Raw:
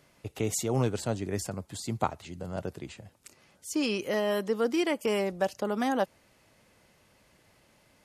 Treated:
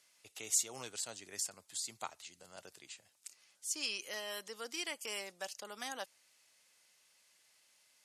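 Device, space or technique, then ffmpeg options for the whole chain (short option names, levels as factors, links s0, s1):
piezo pickup straight into a mixer: -af "lowpass=8500,aderivative,equalizer=f=90:w=1.5:g=2.5,volume=1.5"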